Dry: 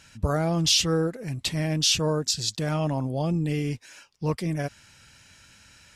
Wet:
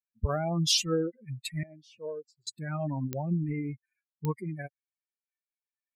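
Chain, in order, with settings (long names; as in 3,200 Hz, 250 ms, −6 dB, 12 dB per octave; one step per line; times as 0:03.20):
spectral dynamics exaggerated over time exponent 3
0:01.63–0:02.47: resonant band-pass 540 Hz, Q 4.4
digital clicks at 0:03.13/0:04.25, −18 dBFS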